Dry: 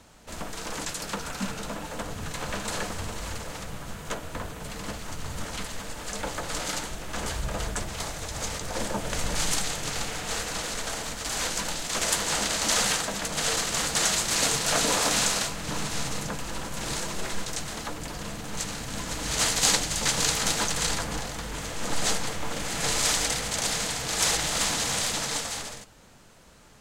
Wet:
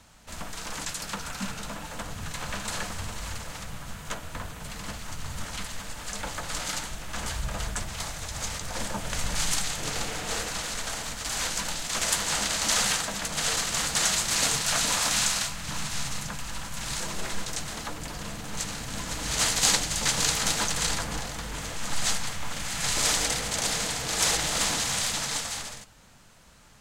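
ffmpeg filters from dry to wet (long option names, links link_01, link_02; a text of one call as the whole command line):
ffmpeg -i in.wav -af "asetnsamples=nb_out_samples=441:pad=0,asendcmd='9.79 equalizer g 1;10.49 equalizer g -6;14.62 equalizer g -13;17 equalizer g -3.5;21.77 equalizer g -12;22.97 equalizer g -0.5;24.8 equalizer g -6.5',equalizer=frequency=400:width_type=o:width=1.4:gain=-8" out.wav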